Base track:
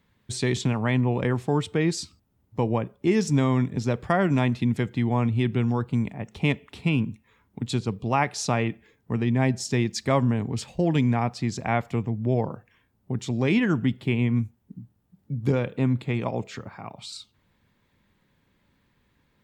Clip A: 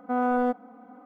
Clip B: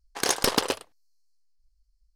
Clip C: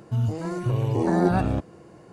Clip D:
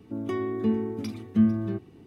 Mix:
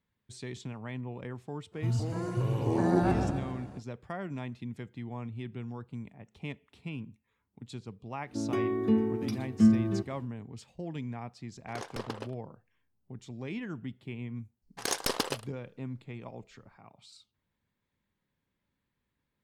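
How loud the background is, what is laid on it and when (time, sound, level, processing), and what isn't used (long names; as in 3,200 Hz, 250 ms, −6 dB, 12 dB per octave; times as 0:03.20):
base track −16 dB
0:01.71: mix in C −6 dB, fades 0.05 s + repeating echo 132 ms, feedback 55%, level −7 dB
0:08.24: mix in D −0.5 dB, fades 0.10 s
0:11.52: mix in B −12.5 dB + low-pass filter 1,500 Hz 6 dB per octave
0:14.62: mix in B −7 dB
not used: A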